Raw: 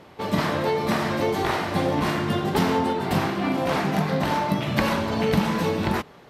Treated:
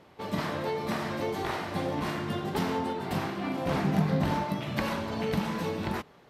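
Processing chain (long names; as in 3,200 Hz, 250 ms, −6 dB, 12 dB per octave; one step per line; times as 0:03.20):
0:03.66–0:04.44: low-shelf EQ 260 Hz +10.5 dB
level −8 dB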